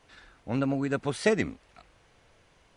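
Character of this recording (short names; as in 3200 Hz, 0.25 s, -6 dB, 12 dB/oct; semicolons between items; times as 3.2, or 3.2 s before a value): noise floor -63 dBFS; spectral tilt -5.5 dB/oct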